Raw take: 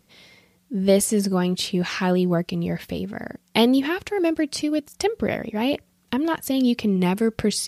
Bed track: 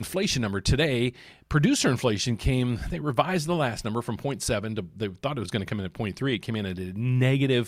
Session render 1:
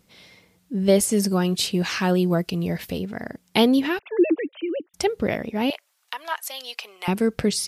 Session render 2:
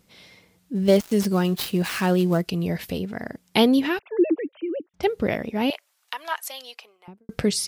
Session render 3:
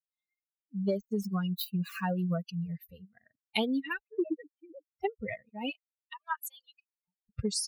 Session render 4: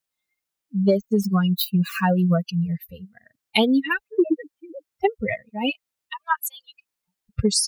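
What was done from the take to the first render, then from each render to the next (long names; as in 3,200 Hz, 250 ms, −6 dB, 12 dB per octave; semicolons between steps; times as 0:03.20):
0:01.12–0:02.98: high-shelf EQ 6,500 Hz +7.5 dB; 0:03.99–0:04.94: three sine waves on the formant tracks; 0:05.70–0:07.08: high-pass filter 770 Hz 24 dB per octave
0:00.75–0:02.45: gap after every zero crossing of 0.062 ms; 0:04.02–0:05.03: head-to-tape spacing loss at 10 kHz 31 dB; 0:06.36–0:07.29: fade out and dull
spectral dynamics exaggerated over time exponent 3; downward compressor 6 to 1, threshold −27 dBFS, peak gain reduction 12 dB
level +11.5 dB; brickwall limiter −3 dBFS, peak gain reduction 2 dB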